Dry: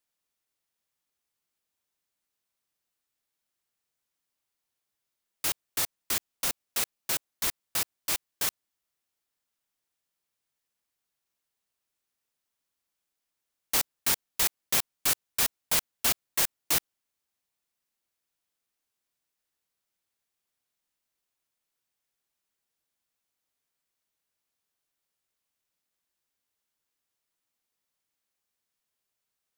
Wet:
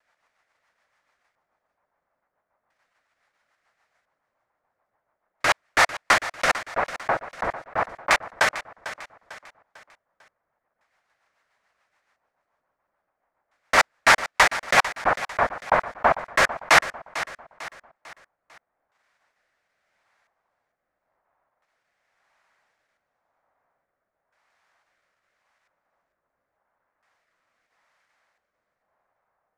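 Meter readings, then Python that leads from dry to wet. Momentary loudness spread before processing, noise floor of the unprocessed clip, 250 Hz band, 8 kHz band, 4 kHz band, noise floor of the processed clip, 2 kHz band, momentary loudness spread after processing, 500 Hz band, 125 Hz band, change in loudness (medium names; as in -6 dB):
6 LU, -85 dBFS, +7.5 dB, -3.0 dB, +4.0 dB, -81 dBFS, +17.0 dB, 17 LU, +17.0 dB, +7.0 dB, +6.0 dB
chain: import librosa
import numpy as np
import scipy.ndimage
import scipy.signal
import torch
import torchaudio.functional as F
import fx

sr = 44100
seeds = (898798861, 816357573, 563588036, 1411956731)

p1 = fx.band_shelf(x, sr, hz=1100.0, db=15.0, octaves=2.3)
p2 = fx.level_steps(p1, sr, step_db=16)
p3 = p1 + F.gain(torch.from_numpy(p2), -3.0).numpy()
p4 = fx.rotary_switch(p3, sr, hz=7.0, then_hz=0.9, switch_at_s=15.33)
p5 = fx.vibrato(p4, sr, rate_hz=0.77, depth_cents=20.0)
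p6 = fx.filter_lfo_lowpass(p5, sr, shape='square', hz=0.37, low_hz=950.0, high_hz=5500.0, q=0.76)
p7 = p6 + fx.echo_feedback(p6, sr, ms=448, feedback_pct=42, wet_db=-14.0, dry=0)
y = F.gain(torch.from_numpy(p7), 7.5).numpy()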